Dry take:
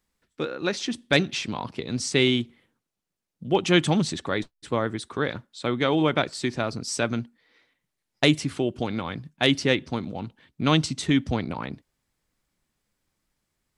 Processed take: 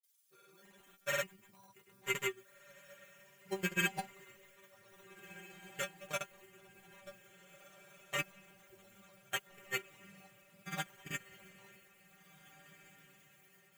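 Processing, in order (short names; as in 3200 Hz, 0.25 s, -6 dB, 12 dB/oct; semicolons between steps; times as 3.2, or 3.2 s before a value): graphic EQ 125/250/2000 Hz +5/-10/+7 dB; level quantiser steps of 21 dB; sample-and-hold 9×; added noise violet -47 dBFS; metallic resonator 190 Hz, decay 0.23 s, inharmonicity 0.002; grains, pitch spread up and down by 0 st; on a send: diffused feedback echo 1.797 s, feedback 51%, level -10 dB; on the sum: upward expander 1.5:1, over -51 dBFS; gain +1.5 dB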